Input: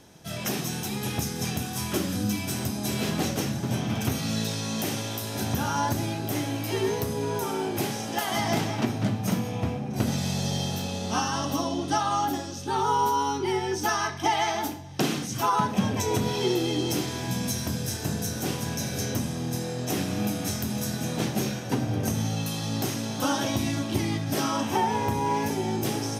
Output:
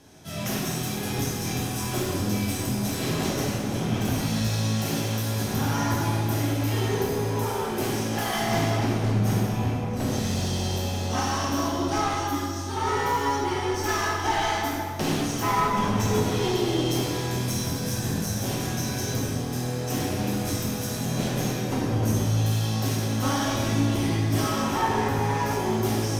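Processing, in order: 12.13–12.77 s: peaking EQ 740 Hz -10 dB 1.8 oct; one-sided clip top -30.5 dBFS; plate-style reverb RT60 2.1 s, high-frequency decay 0.6×, DRR -5 dB; trim -3 dB

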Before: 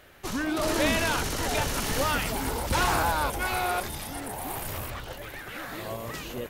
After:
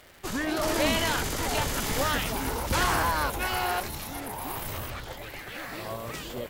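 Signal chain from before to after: formant shift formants +2 st; crackle 210 per s -40 dBFS; MP3 112 kbps 48 kHz

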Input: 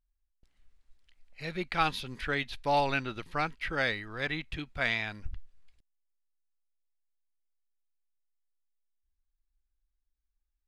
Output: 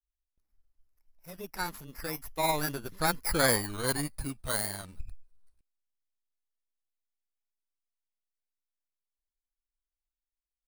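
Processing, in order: bit-reversed sample order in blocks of 16 samples; Doppler pass-by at 3.48 s, 37 m/s, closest 18 m; granulator 100 ms, grains 20 per s, spray 10 ms, pitch spread up and down by 0 st; trim +8 dB

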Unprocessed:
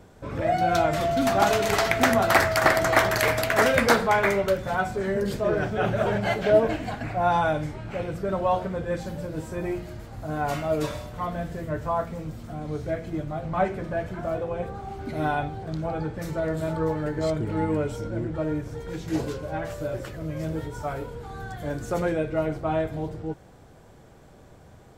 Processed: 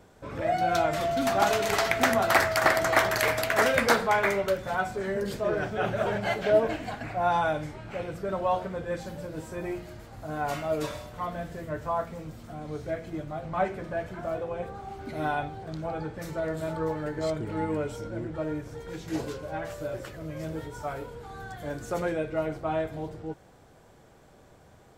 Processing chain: bass shelf 290 Hz -5.5 dB; trim -2 dB

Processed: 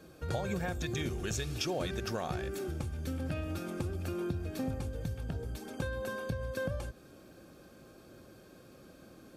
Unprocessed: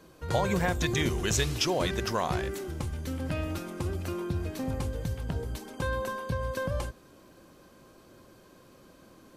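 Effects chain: bass shelf 98 Hz +9.5 dB; compression 5:1, threshold -30 dBFS, peak gain reduction 10.5 dB; comb of notches 1 kHz

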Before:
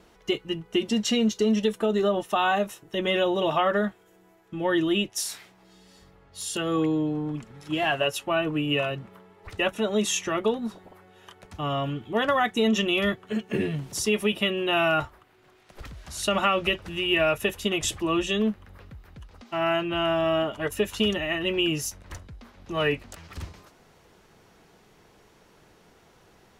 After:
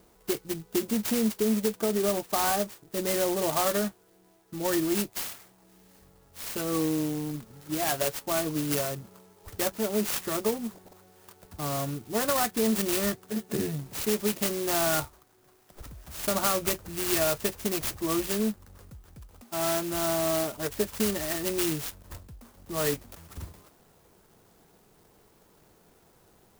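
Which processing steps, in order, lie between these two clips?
sampling jitter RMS 0.11 ms; trim -3 dB

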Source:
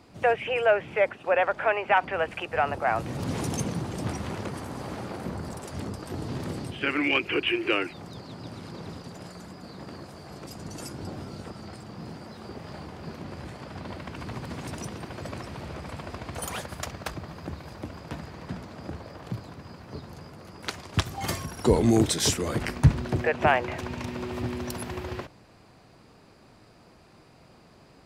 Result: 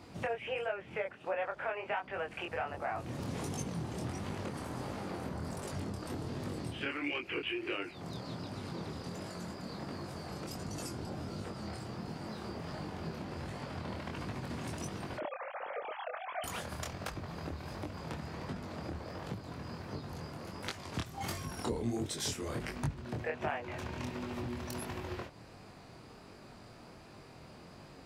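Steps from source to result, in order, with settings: 15.17–16.44 s: formants replaced by sine waves; compression 3:1, threshold -40 dBFS, peak gain reduction 20.5 dB; chorus 1.4 Hz, delay 20 ms, depth 6.3 ms; trim +4.5 dB

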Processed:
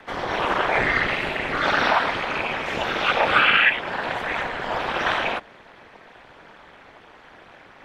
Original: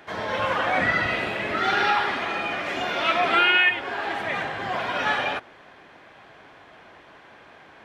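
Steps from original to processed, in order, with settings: whisper effect; ring modulator 120 Hz; trim +4.5 dB

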